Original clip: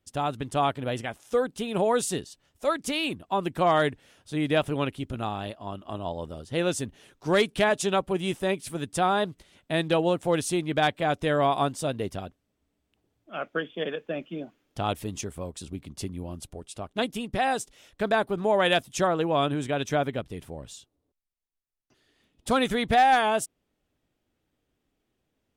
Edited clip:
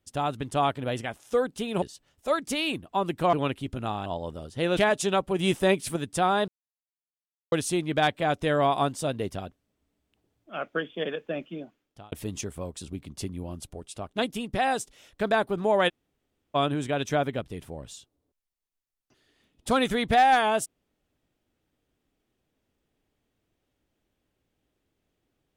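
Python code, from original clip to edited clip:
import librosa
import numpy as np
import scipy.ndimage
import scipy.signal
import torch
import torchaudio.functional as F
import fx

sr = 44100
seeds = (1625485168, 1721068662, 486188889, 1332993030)

y = fx.edit(x, sr, fx.cut(start_s=1.82, length_s=0.37),
    fx.cut(start_s=3.7, length_s=1.0),
    fx.cut(start_s=5.43, length_s=0.58),
    fx.cut(start_s=6.72, length_s=0.85),
    fx.clip_gain(start_s=8.19, length_s=0.57, db=4.5),
    fx.silence(start_s=9.28, length_s=1.04),
    fx.fade_out_span(start_s=14.21, length_s=0.71),
    fx.room_tone_fill(start_s=18.69, length_s=0.66, crossfade_s=0.02), tone=tone)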